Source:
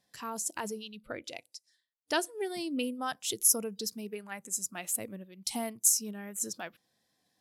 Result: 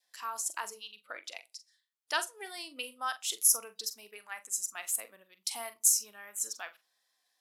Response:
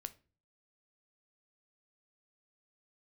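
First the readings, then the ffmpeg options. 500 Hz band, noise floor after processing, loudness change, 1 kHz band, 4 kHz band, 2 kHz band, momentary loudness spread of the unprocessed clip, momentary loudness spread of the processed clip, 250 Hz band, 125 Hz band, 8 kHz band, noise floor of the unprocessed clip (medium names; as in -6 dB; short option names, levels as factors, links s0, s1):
-9.5 dB, -79 dBFS, 0.0 dB, 0.0 dB, +0.5 dB, +1.0 dB, 17 LU, 20 LU, -20.5 dB, under -25 dB, 0.0 dB, -81 dBFS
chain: -filter_complex "[0:a]highpass=910,adynamicequalizer=threshold=0.002:dfrequency=1200:dqfactor=2.5:tfrequency=1200:tqfactor=2.5:attack=5:release=100:ratio=0.375:range=3:mode=boostabove:tftype=bell,asplit=2[s0][s1];[1:a]atrim=start_sample=2205,asetrate=61740,aresample=44100,adelay=43[s2];[s1][s2]afir=irnorm=-1:irlink=0,volume=0.562[s3];[s0][s3]amix=inputs=2:normalize=0"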